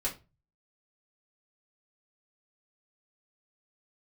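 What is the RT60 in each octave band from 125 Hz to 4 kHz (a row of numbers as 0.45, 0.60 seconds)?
0.60, 0.35, 0.30, 0.25, 0.25, 0.20 seconds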